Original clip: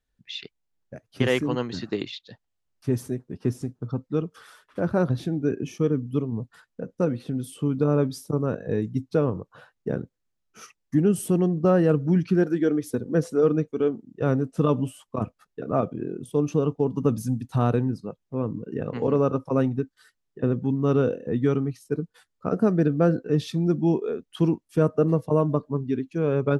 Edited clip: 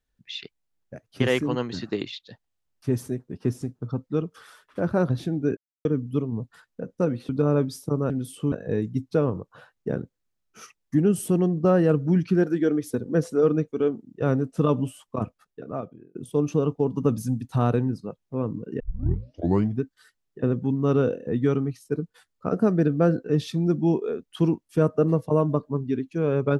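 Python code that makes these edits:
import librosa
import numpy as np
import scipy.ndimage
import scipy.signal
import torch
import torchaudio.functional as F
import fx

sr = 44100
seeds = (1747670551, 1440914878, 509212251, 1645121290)

y = fx.edit(x, sr, fx.silence(start_s=5.57, length_s=0.28),
    fx.move(start_s=7.29, length_s=0.42, to_s=8.52),
    fx.fade_out_span(start_s=15.18, length_s=0.97),
    fx.tape_start(start_s=18.8, length_s=1.02), tone=tone)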